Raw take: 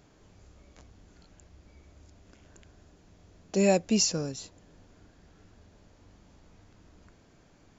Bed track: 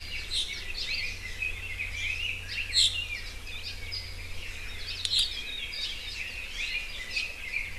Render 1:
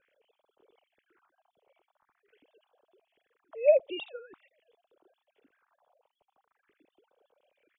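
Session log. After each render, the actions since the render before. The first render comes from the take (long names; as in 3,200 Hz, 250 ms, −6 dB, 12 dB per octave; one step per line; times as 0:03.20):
three sine waves on the formant tracks
all-pass phaser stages 4, 0.45 Hz, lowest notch 270–2,000 Hz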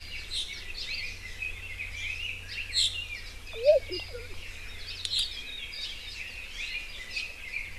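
mix in bed track −3 dB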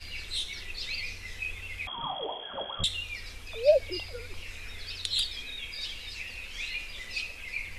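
0:01.87–0:02.84: voice inversion scrambler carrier 3,300 Hz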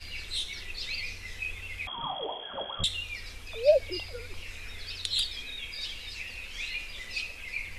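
no processing that can be heard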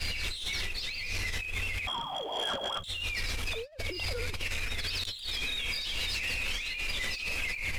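compressor whose output falls as the input rises −42 dBFS, ratio −1
leveller curve on the samples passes 2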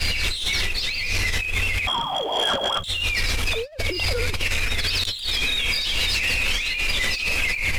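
level +10.5 dB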